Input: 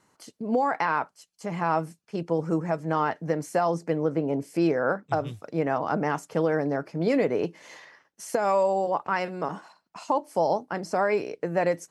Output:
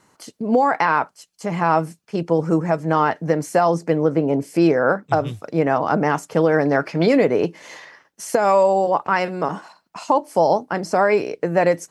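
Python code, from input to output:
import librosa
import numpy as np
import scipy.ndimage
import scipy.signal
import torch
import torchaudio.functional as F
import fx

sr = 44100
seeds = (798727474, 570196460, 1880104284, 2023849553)

y = fx.peak_eq(x, sr, hz=2400.0, db=fx.line((6.53, 3.0), (7.05, 14.0)), octaves=2.9, at=(6.53, 7.05), fade=0.02)
y = y * librosa.db_to_amplitude(7.5)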